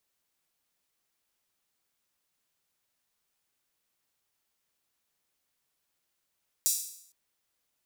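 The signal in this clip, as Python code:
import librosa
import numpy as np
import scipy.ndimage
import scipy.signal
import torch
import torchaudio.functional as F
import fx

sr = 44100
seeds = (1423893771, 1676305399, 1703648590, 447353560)

y = fx.drum_hat_open(sr, length_s=0.46, from_hz=6300.0, decay_s=0.67)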